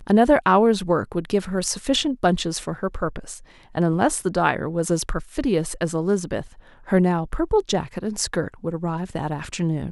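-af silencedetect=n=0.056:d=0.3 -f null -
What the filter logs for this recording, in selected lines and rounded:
silence_start: 3.34
silence_end: 3.75 | silence_duration: 0.42
silence_start: 6.41
silence_end: 6.90 | silence_duration: 0.49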